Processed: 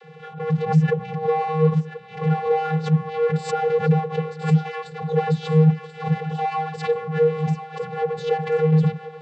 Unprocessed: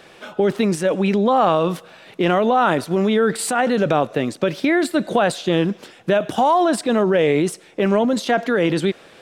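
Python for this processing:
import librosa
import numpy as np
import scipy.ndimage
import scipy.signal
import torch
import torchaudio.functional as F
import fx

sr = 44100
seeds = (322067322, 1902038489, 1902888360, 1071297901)

p1 = fx.rider(x, sr, range_db=4, speed_s=0.5)
p2 = x + F.gain(torch.from_numpy(p1), 1.5).numpy()
p3 = np.clip(p2, -10.0 ** (-13.0 / 20.0), 10.0 ** (-13.0 / 20.0))
p4 = p3 + fx.echo_thinned(p3, sr, ms=1034, feedback_pct=42, hz=680.0, wet_db=-9, dry=0)
p5 = fx.vocoder(p4, sr, bands=32, carrier='square', carrier_hz=157.0)
p6 = fx.lowpass(p5, sr, hz=3600.0, slope=6)
p7 = fx.pre_swell(p6, sr, db_per_s=150.0)
y = F.gain(torch.from_numpy(p7), -4.0).numpy()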